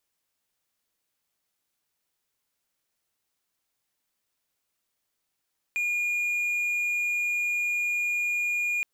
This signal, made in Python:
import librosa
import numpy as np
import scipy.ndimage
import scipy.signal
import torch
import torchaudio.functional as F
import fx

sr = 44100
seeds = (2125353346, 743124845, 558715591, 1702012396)

y = 10.0 ** (-22.5 / 20.0) * (1.0 - 4.0 * np.abs(np.mod(2430.0 * (np.arange(round(3.07 * sr)) / sr) + 0.25, 1.0) - 0.5))